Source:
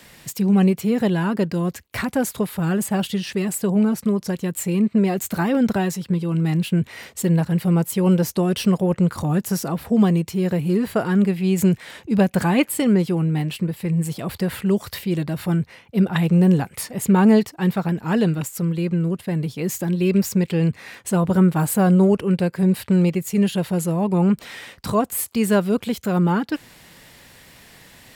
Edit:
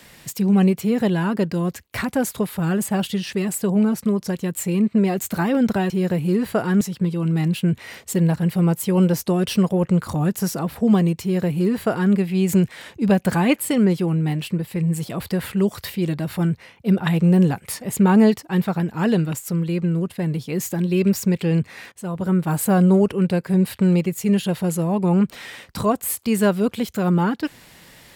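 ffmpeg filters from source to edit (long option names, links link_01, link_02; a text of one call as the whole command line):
ffmpeg -i in.wav -filter_complex "[0:a]asplit=4[link_01][link_02][link_03][link_04];[link_01]atrim=end=5.902[link_05];[link_02]atrim=start=10.308:end=11.222[link_06];[link_03]atrim=start=5.898:end=21.01,asetpts=PTS-STARTPTS,afade=type=out:start_time=15.108:duration=0.004:curve=hsin:silence=0.177828[link_07];[link_04]atrim=start=21.01,asetpts=PTS-STARTPTS,afade=type=in:duration=0.75:silence=0.177828[link_08];[link_05][link_06]acrossfade=duration=0.004:curve1=hsin:curve2=hsin[link_09];[link_07][link_08]concat=n=2:v=0:a=1[link_10];[link_09][link_10]acrossfade=duration=0.004:curve1=hsin:curve2=hsin" out.wav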